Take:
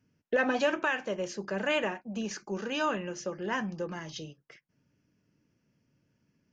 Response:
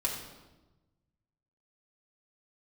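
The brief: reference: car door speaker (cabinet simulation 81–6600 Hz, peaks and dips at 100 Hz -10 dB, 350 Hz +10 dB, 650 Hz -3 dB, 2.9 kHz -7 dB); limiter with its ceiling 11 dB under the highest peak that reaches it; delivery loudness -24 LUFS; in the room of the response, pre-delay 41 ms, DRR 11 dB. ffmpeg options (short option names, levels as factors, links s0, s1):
-filter_complex "[0:a]alimiter=level_in=1.58:limit=0.0631:level=0:latency=1,volume=0.631,asplit=2[s0][s1];[1:a]atrim=start_sample=2205,adelay=41[s2];[s1][s2]afir=irnorm=-1:irlink=0,volume=0.158[s3];[s0][s3]amix=inputs=2:normalize=0,highpass=81,equalizer=f=100:t=q:w=4:g=-10,equalizer=f=350:t=q:w=4:g=10,equalizer=f=650:t=q:w=4:g=-3,equalizer=f=2900:t=q:w=4:g=-7,lowpass=f=6600:w=0.5412,lowpass=f=6600:w=1.3066,volume=3.76"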